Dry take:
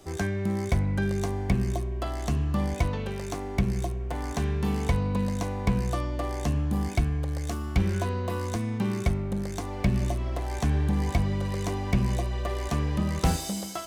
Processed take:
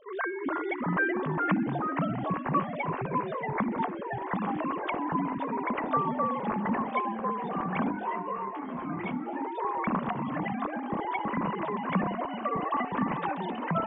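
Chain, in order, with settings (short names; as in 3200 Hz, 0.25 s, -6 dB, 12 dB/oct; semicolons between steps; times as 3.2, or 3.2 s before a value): sine-wave speech; bell 1100 Hz +12.5 dB 0.33 oct; echoes that change speed 0.291 s, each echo -2 st, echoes 3; on a send: thin delay 63 ms, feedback 63%, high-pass 2700 Hz, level -20.5 dB; 7.92–9.41 on the sum: detuned doubles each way 17 cents; gain -8 dB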